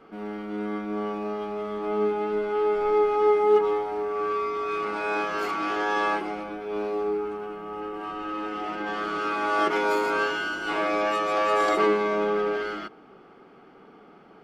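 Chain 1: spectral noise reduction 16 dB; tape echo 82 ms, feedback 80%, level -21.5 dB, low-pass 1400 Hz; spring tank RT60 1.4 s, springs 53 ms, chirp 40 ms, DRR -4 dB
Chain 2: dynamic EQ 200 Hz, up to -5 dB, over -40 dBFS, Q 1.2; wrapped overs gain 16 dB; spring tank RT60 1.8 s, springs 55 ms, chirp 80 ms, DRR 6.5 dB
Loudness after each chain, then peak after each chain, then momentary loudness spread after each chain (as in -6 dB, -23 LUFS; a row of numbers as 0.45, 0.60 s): -22.0, -25.5 LUFS; -6.5, -11.5 dBFS; 16, 12 LU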